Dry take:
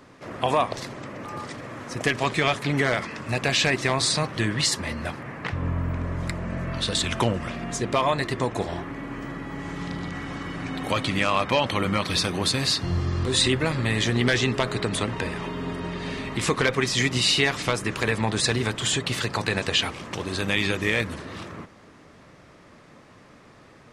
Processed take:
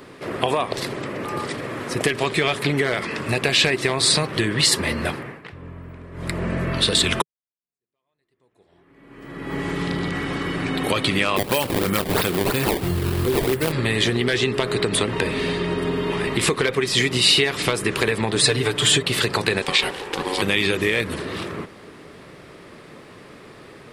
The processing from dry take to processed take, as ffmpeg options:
-filter_complex "[0:a]asplit=3[a][b][c];[a]afade=t=out:st=11.36:d=0.02[d];[b]acrusher=samples=19:mix=1:aa=0.000001:lfo=1:lforange=30.4:lforate=3,afade=t=in:st=11.36:d=0.02,afade=t=out:st=13.71:d=0.02[e];[c]afade=t=in:st=13.71:d=0.02[f];[d][e][f]amix=inputs=3:normalize=0,asettb=1/sr,asplit=3[g][h][i];[g]atrim=end=18.354[j];[h]atrim=start=18.35:end=19.03,asetpts=PTS-STARTPTS,afade=t=in:d=0.004:c=qsin,afade=t=out:st=0.676:d=0.004:c=qsin,aecho=1:1:6.8:0.77,atrim=end_sample=29988[k];[i]atrim=start=19.026[l];[j][k]acrossfade=d=0.004:c1=hsin:c2=qsin[m];[m][l]acrossfade=d=0.004:c1=qsin:c2=hsin,asettb=1/sr,asplit=3[n][o][p];[n]atrim=end=19.624[q];[o]atrim=start=19.62:end=20.42,asetpts=PTS-STARTPTS,afade=t=in:d=0.004:c=qsin,afade=t=out:st=0.796:d=0.004:c=qsin,aeval=exprs='val(0)*sin(2*PI*650*n/s)':c=same[r];[p]atrim=start=20.416[s];[q][r]acrossfade=d=0.004:c1=hsin:c2=qsin[t];[t][s]acrossfade=d=0.004:c1=qsin:c2=hsin,asplit=6[u][v][w][x][y][z];[u]atrim=end=5.42,asetpts=PTS-STARTPTS,afade=t=out:st=5.1:d=0.32:silence=0.149624[aa];[v]atrim=start=5.42:end=6.12,asetpts=PTS-STARTPTS,volume=-16.5dB[ab];[w]atrim=start=6.12:end=7.22,asetpts=PTS-STARTPTS,afade=t=in:d=0.32:silence=0.149624,afade=t=out:st=1.096:d=0.004:c=hsin[ac];[x]atrim=start=7.22:end=15.312,asetpts=PTS-STARTPTS,afade=t=in:d=2.32:c=exp[ad];[y]atrim=start=15.308:end=16.272,asetpts=PTS-STARTPTS,areverse[ae];[z]atrim=start=16.268[af];[aa][ab][ac][ad]concat=n=4:v=0:a=1[ag];[ag][ae]acrossfade=d=0.004:c1=hsin:c2=hsin[ah];[ah][af]acrossfade=d=0.004:c1=hsin:c2=hsin,equalizer=f=160:t=o:w=0.67:g=3,equalizer=f=400:t=o:w=0.67:g=9,equalizer=f=6.3k:t=o:w=0.67:g=-10,acompressor=threshold=-22dB:ratio=6,highshelf=f=2.2k:g=10.5,volume=3.5dB"

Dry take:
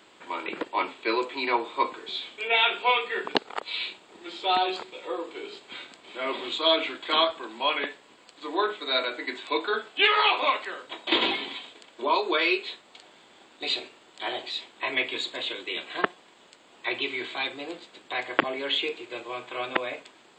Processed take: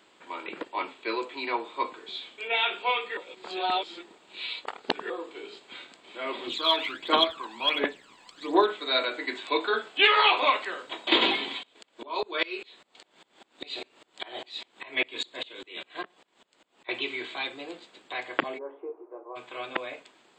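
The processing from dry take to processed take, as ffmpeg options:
-filter_complex "[0:a]asplit=3[a][b][c];[a]afade=t=out:st=6.46:d=0.02[d];[b]aphaser=in_gain=1:out_gain=1:delay=1.2:decay=0.66:speed=1.4:type=triangular,afade=t=in:st=6.46:d=0.02,afade=t=out:st=8.66:d=0.02[e];[c]afade=t=in:st=8.66:d=0.02[f];[d][e][f]amix=inputs=3:normalize=0,asettb=1/sr,asplit=3[g][h][i];[g]atrim=end=11.634[j];[h]atrim=start=11.63:end=16.89,asetpts=PTS-STARTPTS,afade=t=in:d=0.004:c=qsin,afade=t=out:st=5.256:d=0.004:c=qsin,aeval=exprs='val(0)*pow(10,-27*if(lt(mod(-5*n/s,1),2*abs(-5)/1000),1-mod(-5*n/s,1)/(2*abs(-5)/1000),(mod(-5*n/s,1)-2*abs(-5)/1000)/(1-2*abs(-5)/1000))/20)':c=same[k];[i]atrim=start=16.886[l];[j][k]acrossfade=d=0.004:c1=hsin:c2=qsin[m];[m][l]acrossfade=d=0.004:c1=qsin:c2=hsin,asplit=3[n][o][p];[n]afade=t=out:st=18.57:d=0.02[q];[o]asuperpass=centerf=600:order=8:qfactor=0.72,afade=t=in:st=18.57:d=0.02,afade=t=out:st=19.35:d=0.02[r];[p]afade=t=in:st=19.35:d=0.02[s];[q][r][s]amix=inputs=3:normalize=0,asplit=3[t][u][v];[t]atrim=end=3.172[w];[u]atrim=start=3.168:end=5.102,asetpts=PTS-STARTPTS,areverse[x];[v]atrim=start=5.098[y];[w][x]acrossfade=d=0.004:c1=hsin:c2=hsin[z];[z][y]acrossfade=d=0.004:c1=hsin:c2=hsin,equalizer=f=89:t=o:w=0.7:g=-5,dynaudnorm=f=280:g=21:m=11.5dB,volume=-4.5dB"

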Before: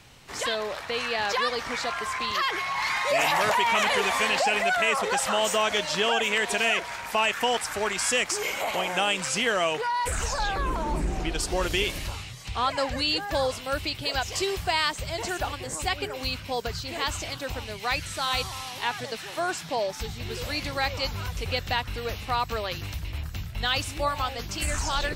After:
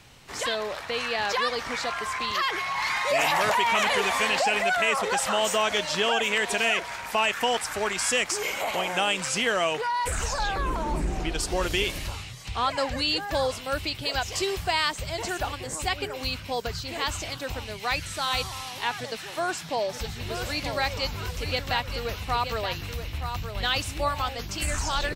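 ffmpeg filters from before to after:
-filter_complex "[0:a]asplit=3[a][b][c];[a]afade=t=out:st=19.88:d=0.02[d];[b]aecho=1:1:924:0.398,afade=t=in:st=19.88:d=0.02,afade=t=out:st=24.28:d=0.02[e];[c]afade=t=in:st=24.28:d=0.02[f];[d][e][f]amix=inputs=3:normalize=0"

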